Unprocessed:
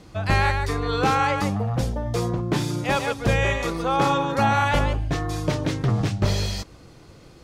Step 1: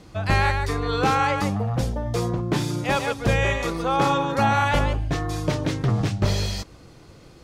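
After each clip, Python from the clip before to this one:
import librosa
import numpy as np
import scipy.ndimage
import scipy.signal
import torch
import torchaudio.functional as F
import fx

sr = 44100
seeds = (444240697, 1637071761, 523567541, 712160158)

y = x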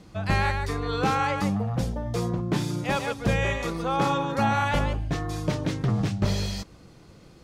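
y = fx.peak_eq(x, sr, hz=190.0, db=6.0, octaves=0.46)
y = y * 10.0 ** (-4.0 / 20.0)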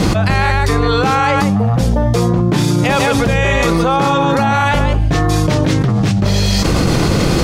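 y = fx.env_flatten(x, sr, amount_pct=100)
y = y * 10.0 ** (6.5 / 20.0)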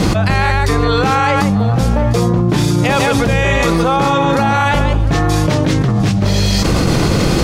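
y = x + 10.0 ** (-15.5 / 20.0) * np.pad(x, (int(704 * sr / 1000.0), 0))[:len(x)]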